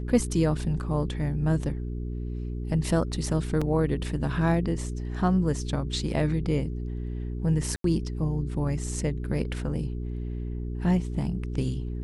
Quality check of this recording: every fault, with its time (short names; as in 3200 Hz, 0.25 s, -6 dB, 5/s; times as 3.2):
hum 60 Hz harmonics 7 -32 dBFS
3.61–3.62 gap 5.4 ms
7.76–7.84 gap 83 ms